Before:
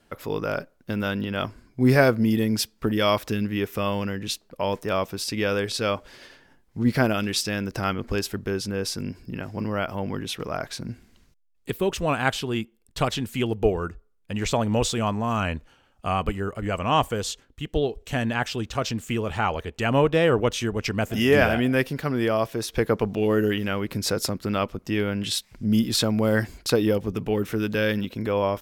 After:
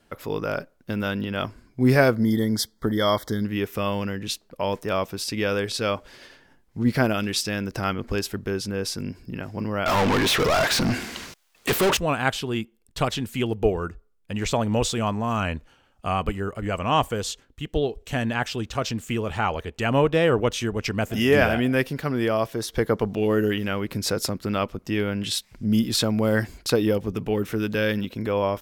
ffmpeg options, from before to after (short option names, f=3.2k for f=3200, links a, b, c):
-filter_complex "[0:a]asettb=1/sr,asplit=3[a][b][c];[a]atrim=end=2.164[d];[b]atrim=start=2.16:end=3.45,asetpts=PTS-STARTPTS,afade=t=in:d=0.004:c=qsin,afade=t=out:st=1.286:d=0.004:c=qsin,asuperstop=centerf=2600:order=20:qfactor=2.9[e];[c]atrim=start=3.446[f];[d][e]acrossfade=d=0.004:c1=hsin:c2=qsin[g];[g][f]acrossfade=d=0.004:c1=qsin:c2=hsin,asettb=1/sr,asplit=3[h][i][j];[h]atrim=end=9.864[k];[i]atrim=start=9.86:end=11.97,asetpts=PTS-STARTPTS,afade=t=in:d=0.004:c=qsin,afade=t=out:st=2.106:d=0.004:c=qsin,asplit=2[l][m];[m]highpass=f=720:p=1,volume=37dB,asoftclip=type=tanh:threshold=-13.5dB[n];[l][n]amix=inputs=2:normalize=0,lowpass=f=6k:p=1,volume=-6dB[o];[j]atrim=start=11.966[p];[k][o]acrossfade=d=0.004:c1=hsin:c2=qsin[q];[q][p]acrossfade=d=0.004:c1=qsin:c2=hsin,asettb=1/sr,asplit=3[r][s][t];[r]atrim=end=22.524[u];[s]atrim=start=22.52:end=23.12,asetpts=PTS-STARTPTS,afade=t=in:d=0.004:c=qsin,afade=t=out:st=0.596:d=0.004:c=qsin,bandreject=f=2.5k:w=6.8[v];[t]atrim=start=23.116[w];[u][v]acrossfade=d=0.004:c1=hsin:c2=qsin[x];[x][w]acrossfade=d=0.004:c1=qsin:c2=hsin"